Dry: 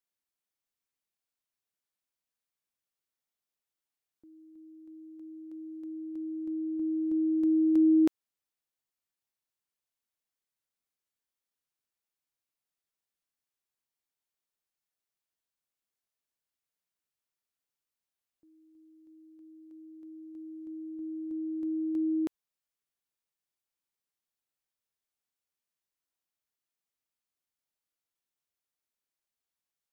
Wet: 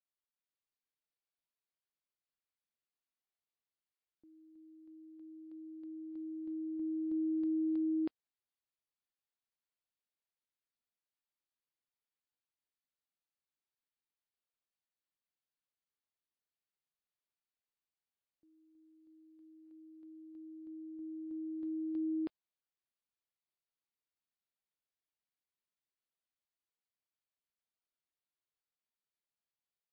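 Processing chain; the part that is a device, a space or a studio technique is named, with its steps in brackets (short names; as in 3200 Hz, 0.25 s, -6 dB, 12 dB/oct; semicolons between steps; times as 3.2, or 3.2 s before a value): low-bitrate web radio (AGC gain up to 3 dB; limiter -20.5 dBFS, peak gain reduction 5 dB; gain -9 dB; MP3 24 kbps 11025 Hz)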